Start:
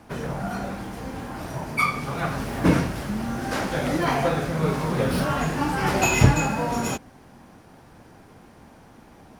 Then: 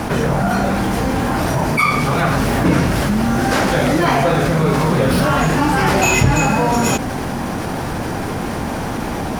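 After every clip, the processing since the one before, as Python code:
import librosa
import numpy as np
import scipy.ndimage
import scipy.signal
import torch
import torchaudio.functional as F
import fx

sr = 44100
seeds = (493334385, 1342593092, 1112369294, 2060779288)

y = fx.env_flatten(x, sr, amount_pct=70)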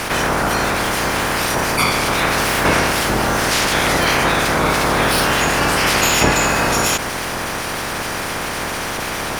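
y = fx.spec_clip(x, sr, under_db=20)
y = y * 10.0 ** (-1.0 / 20.0)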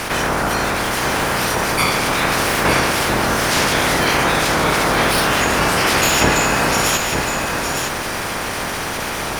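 y = x + 10.0 ** (-6.0 / 20.0) * np.pad(x, (int(910 * sr / 1000.0), 0))[:len(x)]
y = y * 10.0 ** (-1.0 / 20.0)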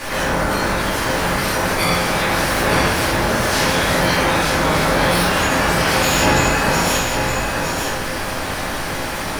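y = fx.room_shoebox(x, sr, seeds[0], volume_m3=150.0, walls='mixed', distance_m=2.4)
y = y * 10.0 ** (-9.5 / 20.0)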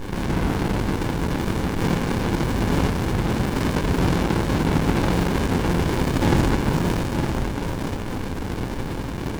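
y = fx.running_max(x, sr, window=65)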